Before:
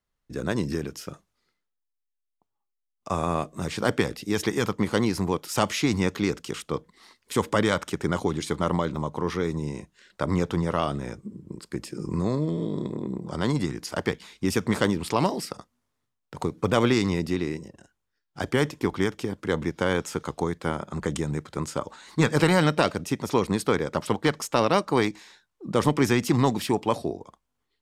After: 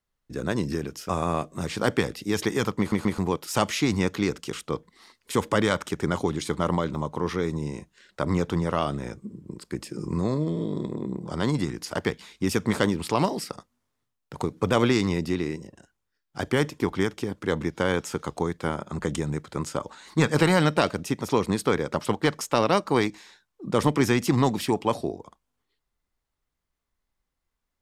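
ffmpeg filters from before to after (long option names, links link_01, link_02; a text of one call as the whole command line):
ffmpeg -i in.wav -filter_complex "[0:a]asplit=5[link_01][link_02][link_03][link_04][link_05];[link_01]atrim=end=1.092[link_06];[link_02]atrim=start=3.098:end=4.932[link_07];[link_03]atrim=start=4.798:end=4.932[link_08];[link_04]atrim=start=4.798:end=4.932[link_09];[link_05]atrim=start=5.188[link_10];[link_06][link_07]acrossfade=duration=0.004:curve1=hsin:curve2=hsin[link_11];[link_11][link_08]acrossfade=duration=0.004:curve1=hsin:curve2=hsin[link_12];[link_12][link_09]acrossfade=duration=0.004:curve1=hsin:curve2=hsin[link_13];[link_13][link_10]acrossfade=duration=0.004:curve1=hsin:curve2=hsin" out.wav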